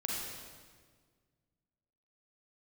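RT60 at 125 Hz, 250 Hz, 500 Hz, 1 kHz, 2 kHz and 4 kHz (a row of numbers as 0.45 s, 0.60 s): 2.4 s, 2.1 s, 1.8 s, 1.5 s, 1.4 s, 1.3 s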